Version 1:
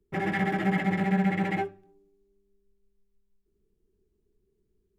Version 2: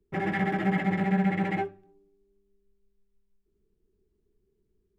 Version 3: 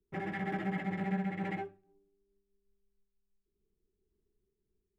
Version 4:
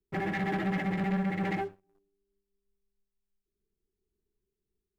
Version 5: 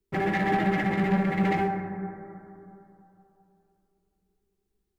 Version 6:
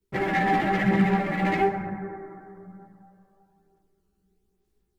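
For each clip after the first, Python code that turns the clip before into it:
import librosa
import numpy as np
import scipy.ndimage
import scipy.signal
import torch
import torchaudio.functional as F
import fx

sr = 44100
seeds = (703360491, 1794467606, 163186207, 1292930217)

y1 = fx.high_shelf(x, sr, hz=4600.0, db=-7.0)
y2 = fx.am_noise(y1, sr, seeds[0], hz=5.7, depth_pct=55)
y2 = y2 * librosa.db_to_amplitude(-6.0)
y3 = fx.leveller(y2, sr, passes=2)
y4 = fx.rev_plate(y3, sr, seeds[1], rt60_s=3.0, hf_ratio=0.25, predelay_ms=0, drr_db=4.0)
y4 = y4 * librosa.db_to_amplitude(4.5)
y5 = fx.chorus_voices(y4, sr, voices=2, hz=0.53, base_ms=15, depth_ms=2.0, mix_pct=60)
y5 = y5 * librosa.db_to_amplitude(5.5)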